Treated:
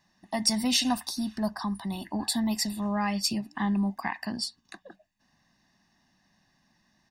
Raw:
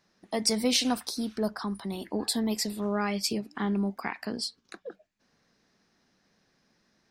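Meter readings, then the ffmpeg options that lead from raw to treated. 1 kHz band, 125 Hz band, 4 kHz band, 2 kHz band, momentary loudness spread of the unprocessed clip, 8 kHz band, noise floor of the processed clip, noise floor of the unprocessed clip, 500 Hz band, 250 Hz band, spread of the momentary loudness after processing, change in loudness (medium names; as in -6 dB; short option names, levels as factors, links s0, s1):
+2.5 dB, +2.0 dB, +1.0 dB, +1.0 dB, 11 LU, +1.0 dB, -70 dBFS, -71 dBFS, -6.0 dB, +1.5 dB, 9 LU, +1.0 dB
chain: -af "aecho=1:1:1.1:0.91,aeval=exprs='0.355*(cos(1*acos(clip(val(0)/0.355,-1,1)))-cos(1*PI/2))+0.00631*(cos(5*acos(clip(val(0)/0.355,-1,1)))-cos(5*PI/2))':c=same,volume=0.794"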